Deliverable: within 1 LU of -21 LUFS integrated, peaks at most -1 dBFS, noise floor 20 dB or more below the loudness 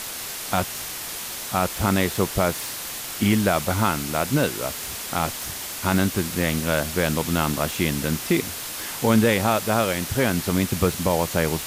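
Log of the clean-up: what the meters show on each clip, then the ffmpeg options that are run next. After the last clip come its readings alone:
noise floor -33 dBFS; noise floor target -44 dBFS; loudness -23.5 LUFS; peak level -7.5 dBFS; loudness target -21.0 LUFS
-> -af "afftdn=nr=11:nf=-33"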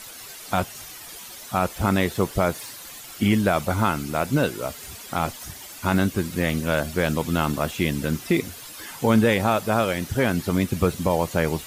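noise floor -41 dBFS; noise floor target -44 dBFS
-> -af "afftdn=nr=6:nf=-41"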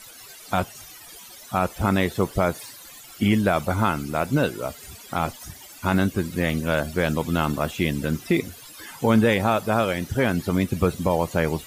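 noise floor -44 dBFS; loudness -23.5 LUFS; peak level -8.5 dBFS; loudness target -21.0 LUFS
-> -af "volume=1.33"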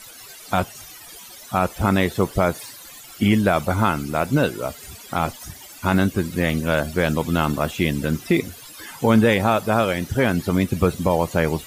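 loudness -21.5 LUFS; peak level -6.0 dBFS; noise floor -42 dBFS

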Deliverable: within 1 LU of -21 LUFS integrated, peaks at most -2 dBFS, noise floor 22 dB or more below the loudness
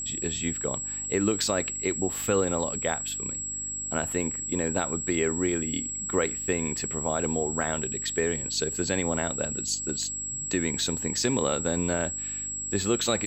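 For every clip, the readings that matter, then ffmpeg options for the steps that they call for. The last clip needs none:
hum 50 Hz; highest harmonic 300 Hz; hum level -44 dBFS; steady tone 7.7 kHz; tone level -31 dBFS; loudness -27.5 LUFS; peak level -11.5 dBFS; loudness target -21.0 LUFS
-> -af "bandreject=f=50:t=h:w=4,bandreject=f=100:t=h:w=4,bandreject=f=150:t=h:w=4,bandreject=f=200:t=h:w=4,bandreject=f=250:t=h:w=4,bandreject=f=300:t=h:w=4"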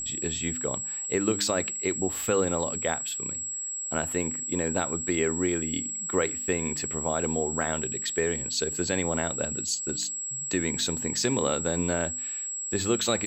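hum not found; steady tone 7.7 kHz; tone level -31 dBFS
-> -af "bandreject=f=7700:w=30"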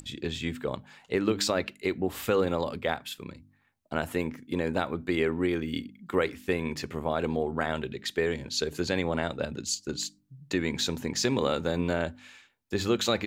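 steady tone not found; loudness -30.0 LUFS; peak level -12.0 dBFS; loudness target -21.0 LUFS
-> -af "volume=2.82"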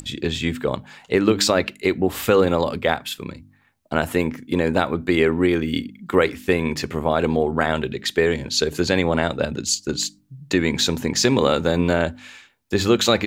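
loudness -21.0 LUFS; peak level -3.0 dBFS; noise floor -58 dBFS

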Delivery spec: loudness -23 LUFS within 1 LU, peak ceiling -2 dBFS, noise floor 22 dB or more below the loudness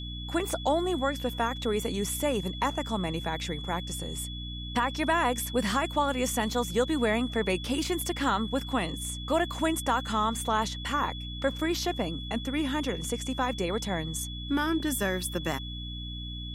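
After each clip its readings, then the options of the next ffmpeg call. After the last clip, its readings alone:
hum 60 Hz; highest harmonic 300 Hz; hum level -36 dBFS; steady tone 3.4 kHz; tone level -40 dBFS; loudness -29.5 LUFS; peak level -14.0 dBFS; loudness target -23.0 LUFS
-> -af "bandreject=f=60:t=h:w=4,bandreject=f=120:t=h:w=4,bandreject=f=180:t=h:w=4,bandreject=f=240:t=h:w=4,bandreject=f=300:t=h:w=4"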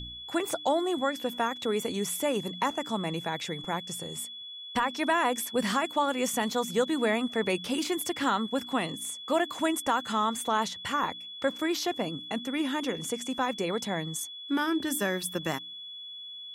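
hum not found; steady tone 3.4 kHz; tone level -40 dBFS
-> -af "bandreject=f=3400:w=30"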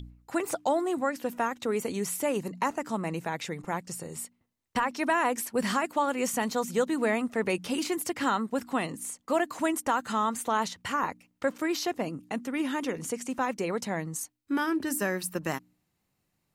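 steady tone not found; loudness -30.5 LUFS; peak level -15.0 dBFS; loudness target -23.0 LUFS
-> -af "volume=2.37"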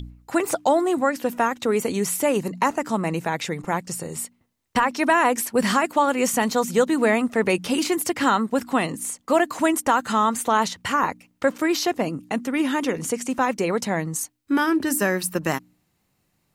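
loudness -23.0 LUFS; peak level -7.5 dBFS; noise floor -70 dBFS

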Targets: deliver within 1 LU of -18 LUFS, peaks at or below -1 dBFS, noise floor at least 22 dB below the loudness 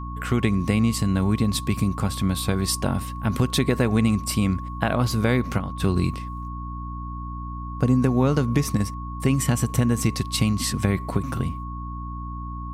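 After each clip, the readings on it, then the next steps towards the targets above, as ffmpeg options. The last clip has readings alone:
hum 60 Hz; highest harmonic 300 Hz; hum level -30 dBFS; steady tone 1.1 kHz; tone level -36 dBFS; loudness -24.0 LUFS; peak level -5.5 dBFS; loudness target -18.0 LUFS
-> -af "bandreject=f=60:t=h:w=6,bandreject=f=120:t=h:w=6,bandreject=f=180:t=h:w=6,bandreject=f=240:t=h:w=6,bandreject=f=300:t=h:w=6"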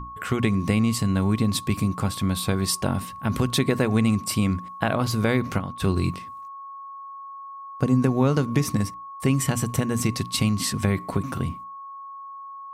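hum not found; steady tone 1.1 kHz; tone level -36 dBFS
-> -af "bandreject=f=1100:w=30"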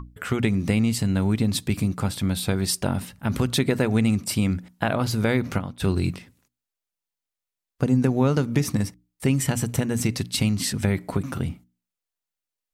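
steady tone not found; loudness -24.5 LUFS; peak level -6.5 dBFS; loudness target -18.0 LUFS
-> -af "volume=2.11,alimiter=limit=0.891:level=0:latency=1"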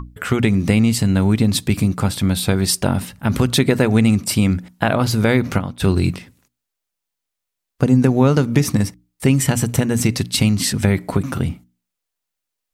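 loudness -18.0 LUFS; peak level -1.0 dBFS; noise floor -81 dBFS

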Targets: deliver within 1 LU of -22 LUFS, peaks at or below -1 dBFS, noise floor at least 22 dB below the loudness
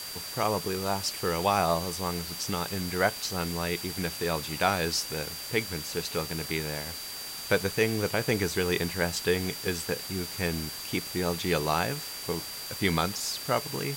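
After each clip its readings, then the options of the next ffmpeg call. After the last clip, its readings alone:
steady tone 4.7 kHz; tone level -40 dBFS; noise floor -39 dBFS; noise floor target -52 dBFS; loudness -29.5 LUFS; peak level -10.5 dBFS; loudness target -22.0 LUFS
-> -af "bandreject=f=4700:w=30"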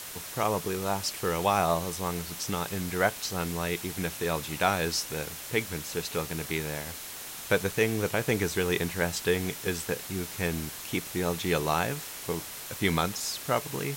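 steady tone not found; noise floor -41 dBFS; noise floor target -52 dBFS
-> -af "afftdn=nr=11:nf=-41"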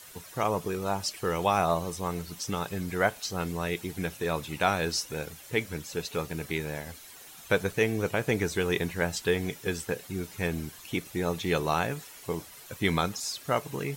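noise floor -49 dBFS; noise floor target -53 dBFS
-> -af "afftdn=nr=6:nf=-49"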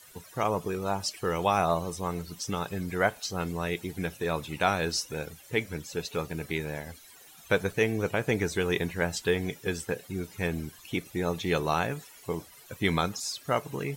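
noise floor -53 dBFS; loudness -30.5 LUFS; peak level -11.0 dBFS; loudness target -22.0 LUFS
-> -af "volume=2.66"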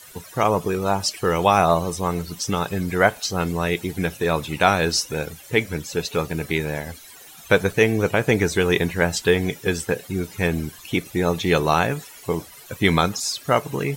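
loudness -22.0 LUFS; peak level -2.5 dBFS; noise floor -44 dBFS

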